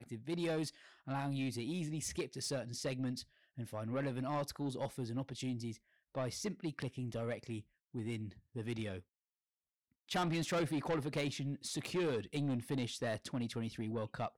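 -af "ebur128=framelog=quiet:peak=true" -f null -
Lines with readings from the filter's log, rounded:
Integrated loudness:
  I:         -39.9 LUFS
  Threshold: -50.1 LUFS
Loudness range:
  LRA:         5.4 LU
  Threshold: -60.4 LUFS
  LRA low:   -43.2 LUFS
  LRA high:  -37.9 LUFS
True peak:
  Peak:      -29.5 dBFS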